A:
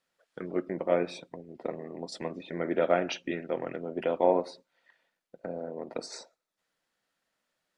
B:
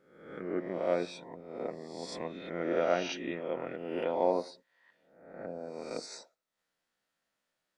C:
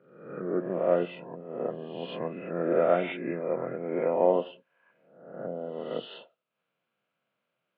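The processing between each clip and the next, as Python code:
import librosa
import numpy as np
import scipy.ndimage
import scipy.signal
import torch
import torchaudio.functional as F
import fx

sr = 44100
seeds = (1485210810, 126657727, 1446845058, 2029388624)

y1 = fx.spec_swells(x, sr, rise_s=0.79)
y1 = y1 * librosa.db_to_amplitude(-5.5)
y2 = fx.freq_compress(y1, sr, knee_hz=1300.0, ratio=1.5)
y2 = fx.cabinet(y2, sr, low_hz=120.0, low_slope=24, high_hz=2900.0, hz=(130.0, 290.0, 850.0, 1800.0), db=(5, -5, -6, -9))
y2 = y2 * librosa.db_to_amplitude(6.5)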